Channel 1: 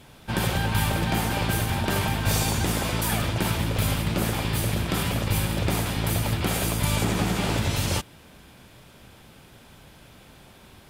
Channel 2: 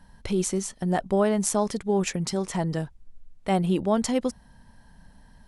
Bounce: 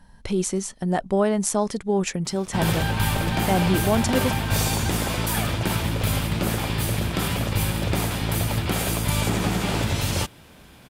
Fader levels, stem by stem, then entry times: +1.0, +1.5 decibels; 2.25, 0.00 seconds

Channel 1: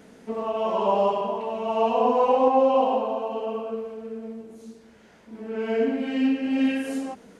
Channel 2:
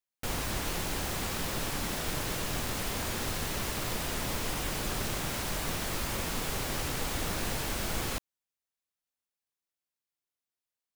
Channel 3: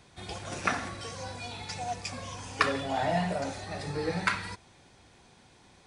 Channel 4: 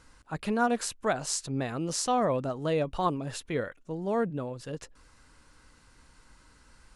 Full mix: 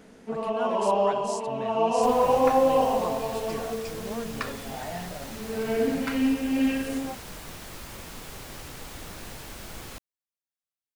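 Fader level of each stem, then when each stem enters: −1.5, −7.5, −8.0, −8.5 decibels; 0.00, 1.80, 1.80, 0.00 seconds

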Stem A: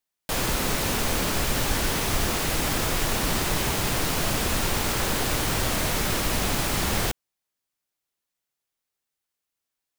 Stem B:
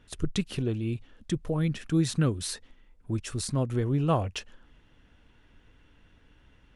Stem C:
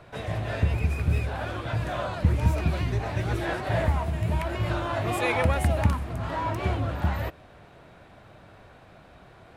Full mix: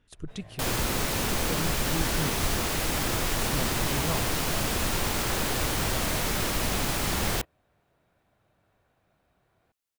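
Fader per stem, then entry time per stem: −2.5, −8.5, −19.5 decibels; 0.30, 0.00, 0.15 seconds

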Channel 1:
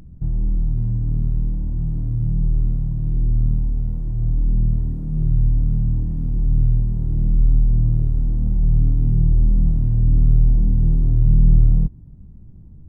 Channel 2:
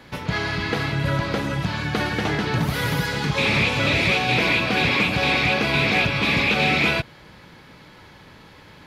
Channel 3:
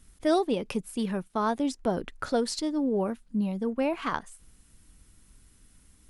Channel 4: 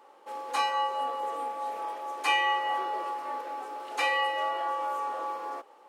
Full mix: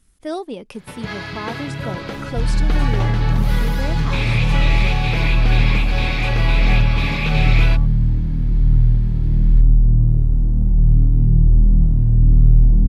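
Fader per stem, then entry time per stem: +3.0, −4.5, −2.5, −5.0 decibels; 2.15, 0.75, 0.00, 2.25 seconds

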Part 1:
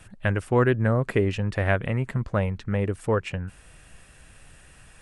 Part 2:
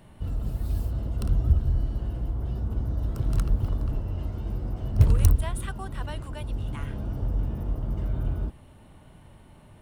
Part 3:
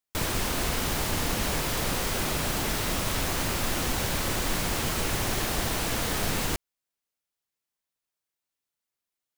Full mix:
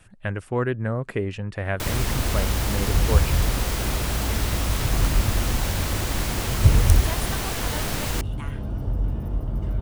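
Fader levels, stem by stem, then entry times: −4.0, +2.5, 0.0 decibels; 0.00, 1.65, 1.65 seconds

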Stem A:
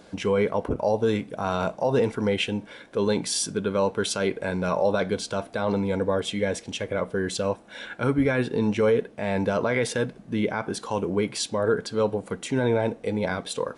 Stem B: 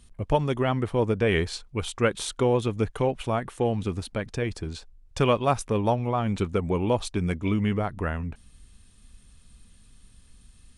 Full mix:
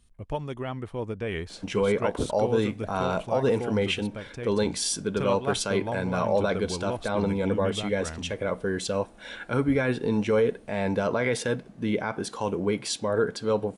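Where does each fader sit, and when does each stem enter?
−1.5, −8.5 decibels; 1.50, 0.00 seconds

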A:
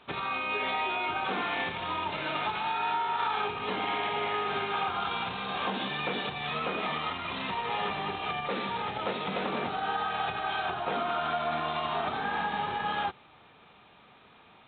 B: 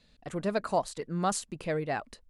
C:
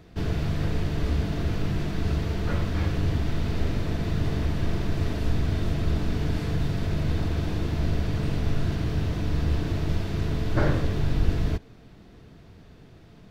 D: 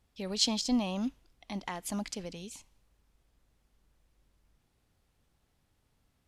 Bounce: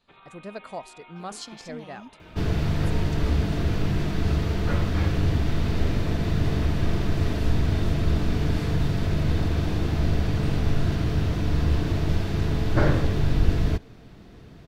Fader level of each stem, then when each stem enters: −19.0, −8.0, +2.5, −12.5 decibels; 0.00, 0.00, 2.20, 1.00 seconds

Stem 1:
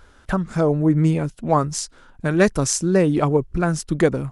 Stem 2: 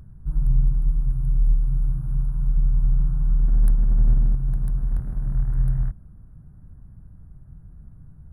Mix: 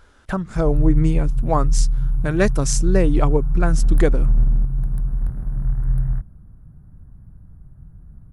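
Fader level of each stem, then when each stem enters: −2.0, +1.5 decibels; 0.00, 0.30 seconds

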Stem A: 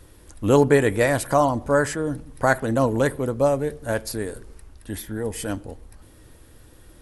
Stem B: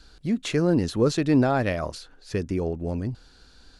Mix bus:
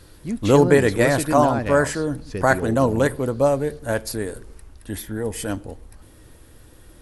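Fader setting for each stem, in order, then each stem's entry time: +1.5, −2.5 decibels; 0.00, 0.00 seconds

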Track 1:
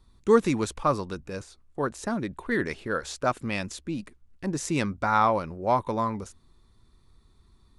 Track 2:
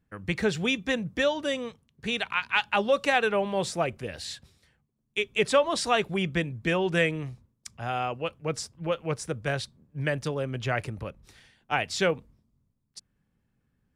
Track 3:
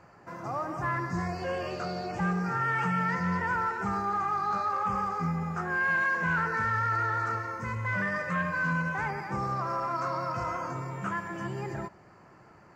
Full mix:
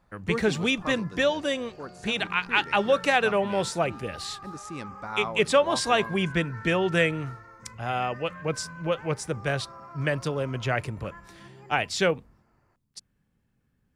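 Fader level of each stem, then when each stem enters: −11.5, +1.5, −14.0 decibels; 0.00, 0.00, 0.00 seconds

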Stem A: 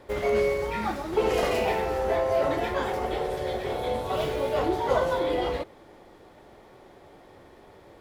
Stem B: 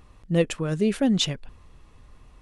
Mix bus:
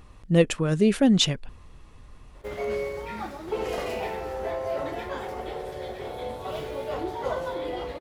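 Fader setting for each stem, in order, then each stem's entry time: −5.5, +2.5 decibels; 2.35, 0.00 seconds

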